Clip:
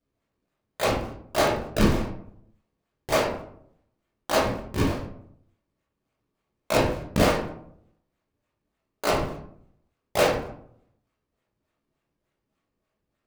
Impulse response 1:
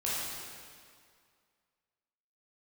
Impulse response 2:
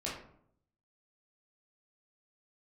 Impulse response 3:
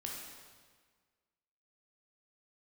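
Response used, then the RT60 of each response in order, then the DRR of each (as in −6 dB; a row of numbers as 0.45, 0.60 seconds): 2; 2.1, 0.65, 1.6 seconds; −8.5, −6.0, −2.0 decibels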